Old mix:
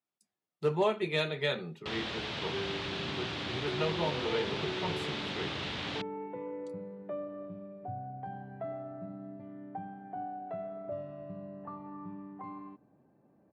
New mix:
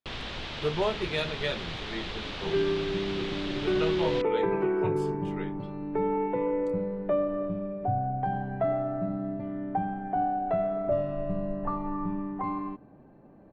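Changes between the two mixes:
first sound: entry −1.80 s
second sound +12.0 dB
master: remove high-pass filter 83 Hz 24 dB per octave

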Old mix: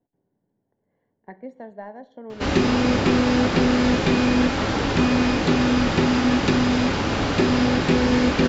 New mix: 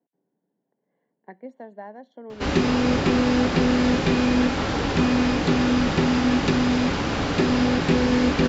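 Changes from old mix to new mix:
speech: add high-pass filter 180 Hz 24 dB per octave
reverb: off

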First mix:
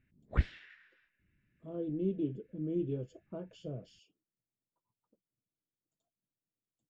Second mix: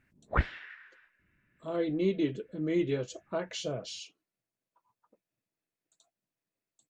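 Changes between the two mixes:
speech: remove moving average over 22 samples
master: add parametric band 1,000 Hz +14 dB 2.4 octaves

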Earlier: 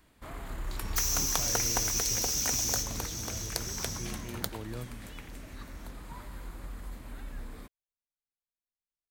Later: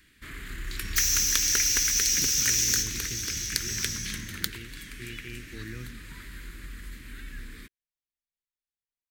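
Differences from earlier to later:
speech: entry +1.00 s
master: add drawn EQ curve 380 Hz 0 dB, 730 Hz −23 dB, 1,700 Hz +10 dB, 11,000 Hz +4 dB

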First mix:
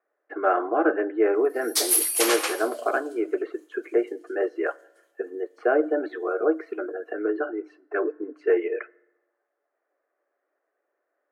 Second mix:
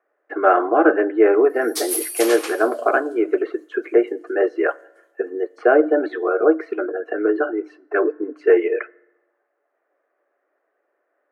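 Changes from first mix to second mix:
speech +7.0 dB
background −3.5 dB

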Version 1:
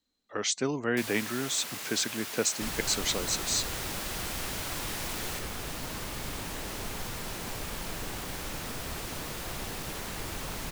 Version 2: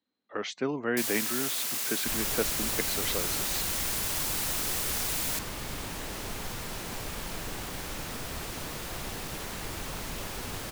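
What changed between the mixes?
speech: add band-pass filter 150–2,800 Hz
first sound: add high-shelf EQ 4,700 Hz +11 dB
second sound: entry −0.55 s

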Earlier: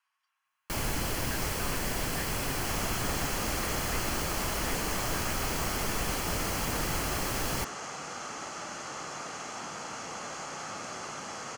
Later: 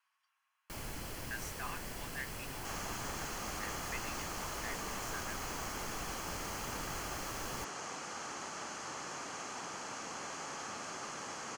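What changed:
first sound −12.0 dB
second sound: send off

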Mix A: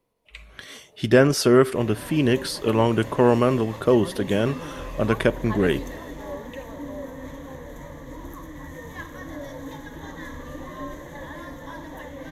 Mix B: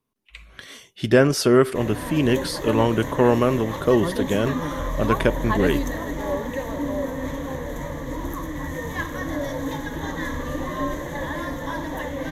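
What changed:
first sound: muted
second sound +8.5 dB

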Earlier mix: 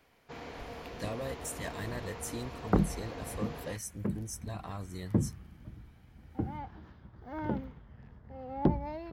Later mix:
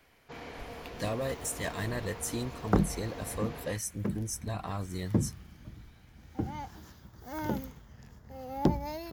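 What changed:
speech +5.0 dB
second sound: remove high-frequency loss of the air 390 metres

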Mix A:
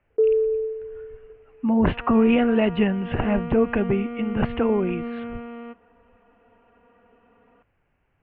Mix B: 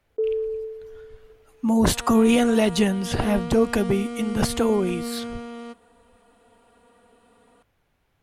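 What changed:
first sound −6.0 dB
master: remove Chebyshev low-pass filter 2,800 Hz, order 5

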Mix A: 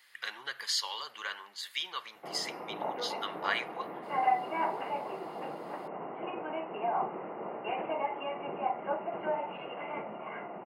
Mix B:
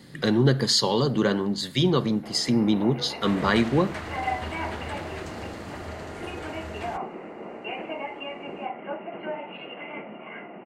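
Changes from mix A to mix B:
speech: remove high-pass with resonance 2,300 Hz, resonance Q 1.6
second sound: unmuted
master: add octave-band graphic EQ 250/1,000/2,000/4,000/8,000 Hz +7/−5/+4/+10/+8 dB

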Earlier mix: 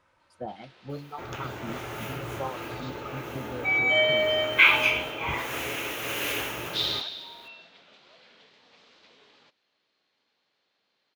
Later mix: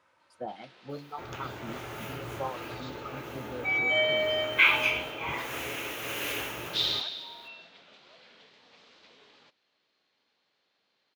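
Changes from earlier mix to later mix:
speech: add high-pass filter 260 Hz 6 dB per octave
second sound −3.5 dB

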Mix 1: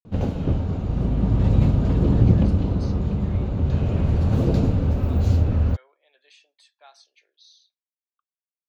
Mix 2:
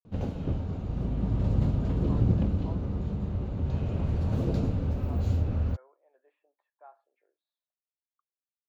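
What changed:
speech: add low-pass filter 1,200 Hz 24 dB per octave
background −8.0 dB

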